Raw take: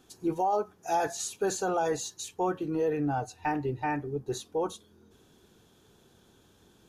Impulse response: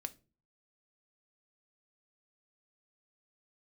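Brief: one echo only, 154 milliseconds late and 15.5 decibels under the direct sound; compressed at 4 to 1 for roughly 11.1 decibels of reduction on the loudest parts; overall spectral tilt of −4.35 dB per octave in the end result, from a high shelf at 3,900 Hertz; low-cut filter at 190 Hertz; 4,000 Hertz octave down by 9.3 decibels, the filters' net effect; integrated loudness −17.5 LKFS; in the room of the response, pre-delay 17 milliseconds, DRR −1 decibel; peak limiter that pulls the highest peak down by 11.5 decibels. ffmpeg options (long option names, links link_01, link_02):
-filter_complex "[0:a]highpass=190,highshelf=frequency=3900:gain=-8,equalizer=frequency=4000:width_type=o:gain=-6,acompressor=threshold=-38dB:ratio=4,alimiter=level_in=14.5dB:limit=-24dB:level=0:latency=1,volume=-14.5dB,aecho=1:1:154:0.168,asplit=2[link_01][link_02];[1:a]atrim=start_sample=2205,adelay=17[link_03];[link_02][link_03]afir=irnorm=-1:irlink=0,volume=3.5dB[link_04];[link_01][link_04]amix=inputs=2:normalize=0,volume=25.5dB"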